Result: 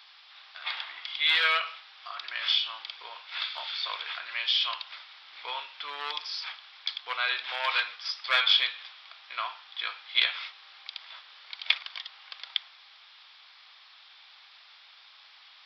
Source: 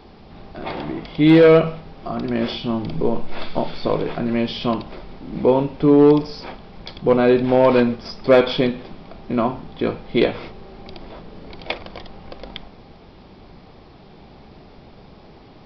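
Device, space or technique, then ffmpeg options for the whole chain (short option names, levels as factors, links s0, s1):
headphones lying on a table: -af "highpass=f=1300:w=0.5412,highpass=f=1300:w=1.3066,equalizer=f=3500:t=o:w=0.6:g=7"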